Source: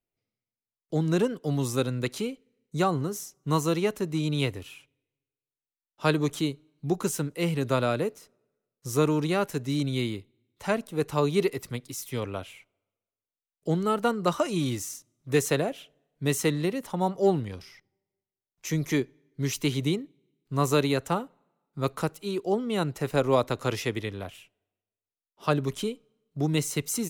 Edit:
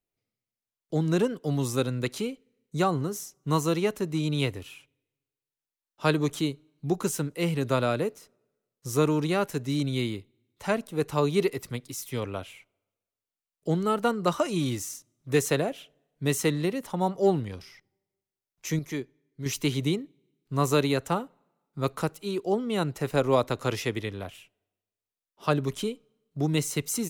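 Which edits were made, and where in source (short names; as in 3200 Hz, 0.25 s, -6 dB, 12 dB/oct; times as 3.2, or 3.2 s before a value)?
18.79–19.46 gain -7 dB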